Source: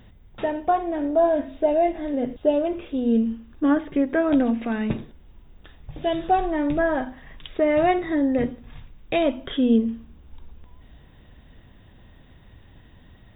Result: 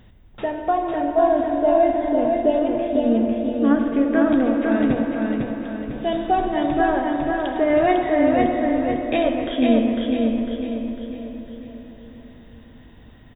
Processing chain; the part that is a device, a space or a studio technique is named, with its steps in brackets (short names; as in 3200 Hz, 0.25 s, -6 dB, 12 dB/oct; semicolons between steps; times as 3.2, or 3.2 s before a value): filtered reverb send (on a send at -4 dB: HPF 180 Hz 24 dB/oct + LPF 3300 Hz + reverb RT60 3.7 s, pre-delay 36 ms); on the sum: feedback echo 0.501 s, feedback 44%, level -3 dB